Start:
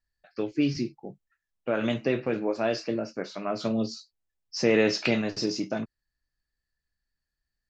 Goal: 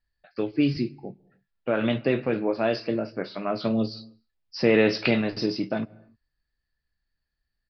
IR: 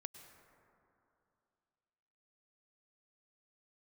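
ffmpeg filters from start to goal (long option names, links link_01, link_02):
-filter_complex "[0:a]aresample=11025,aresample=44100,asplit=2[link_01][link_02];[link_02]bass=frequency=250:gain=8,treble=frequency=4000:gain=-5[link_03];[1:a]atrim=start_sample=2205,afade=type=out:start_time=0.36:duration=0.01,atrim=end_sample=16317[link_04];[link_03][link_04]afir=irnorm=-1:irlink=0,volume=-10dB[link_05];[link_01][link_05]amix=inputs=2:normalize=0,volume=1dB"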